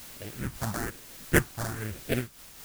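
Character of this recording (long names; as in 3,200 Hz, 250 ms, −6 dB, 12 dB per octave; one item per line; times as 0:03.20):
aliases and images of a low sample rate 1,100 Hz, jitter 20%
phaser sweep stages 4, 1.1 Hz, lowest notch 440–1,100 Hz
a quantiser's noise floor 8 bits, dither triangular
amplitude modulation by smooth noise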